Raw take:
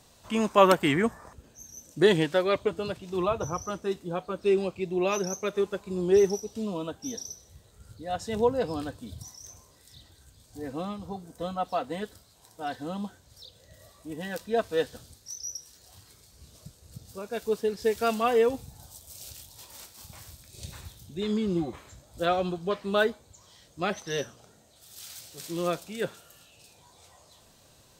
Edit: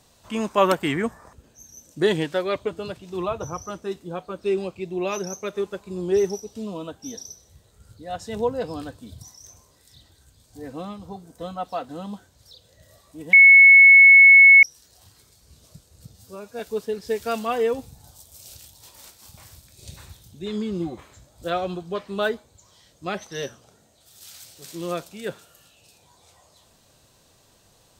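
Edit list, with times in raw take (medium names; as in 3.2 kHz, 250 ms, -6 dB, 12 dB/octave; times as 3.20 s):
11.89–12.80 s: delete
14.24–15.54 s: bleep 2.2 kHz -6.5 dBFS
17.04–17.35 s: stretch 1.5×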